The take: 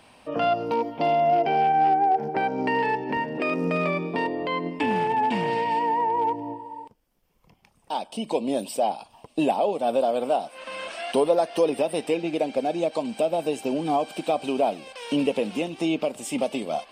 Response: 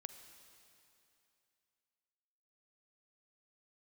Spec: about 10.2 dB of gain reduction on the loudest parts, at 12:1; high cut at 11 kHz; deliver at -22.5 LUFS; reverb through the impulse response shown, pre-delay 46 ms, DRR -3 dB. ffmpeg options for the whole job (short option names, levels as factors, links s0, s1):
-filter_complex "[0:a]lowpass=11000,acompressor=threshold=0.0501:ratio=12,asplit=2[s0][s1];[1:a]atrim=start_sample=2205,adelay=46[s2];[s1][s2]afir=irnorm=-1:irlink=0,volume=2.37[s3];[s0][s3]amix=inputs=2:normalize=0,volume=1.5"